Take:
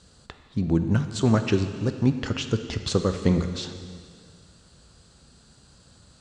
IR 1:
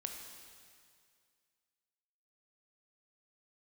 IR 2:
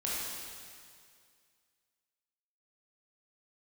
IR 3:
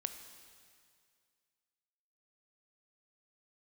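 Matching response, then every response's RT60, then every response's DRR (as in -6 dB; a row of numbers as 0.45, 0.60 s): 3; 2.2, 2.1, 2.2 s; 2.5, -7.0, 7.5 dB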